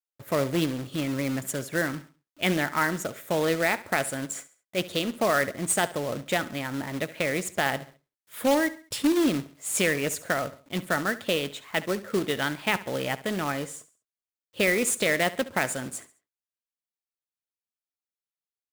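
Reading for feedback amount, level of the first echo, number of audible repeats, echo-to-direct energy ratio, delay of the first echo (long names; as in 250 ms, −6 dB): 38%, −17.0 dB, 3, −16.5 dB, 69 ms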